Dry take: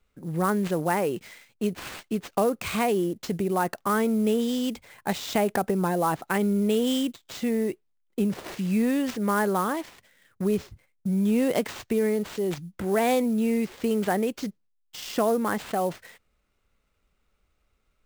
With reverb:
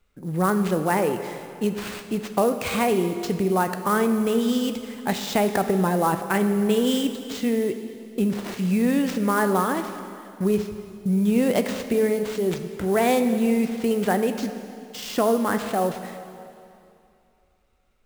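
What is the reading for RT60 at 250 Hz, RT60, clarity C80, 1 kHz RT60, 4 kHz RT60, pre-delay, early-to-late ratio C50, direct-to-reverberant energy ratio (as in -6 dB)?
2.5 s, 2.6 s, 9.5 dB, 2.6 s, 2.4 s, 5 ms, 9.0 dB, 7.5 dB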